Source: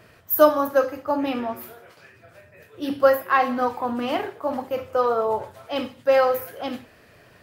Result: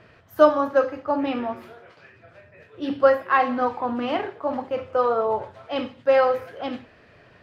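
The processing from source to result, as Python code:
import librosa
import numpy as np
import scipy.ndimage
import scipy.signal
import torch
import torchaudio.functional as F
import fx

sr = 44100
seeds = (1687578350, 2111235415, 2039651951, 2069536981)

y = scipy.signal.sosfilt(scipy.signal.butter(2, 3900.0, 'lowpass', fs=sr, output='sos'), x)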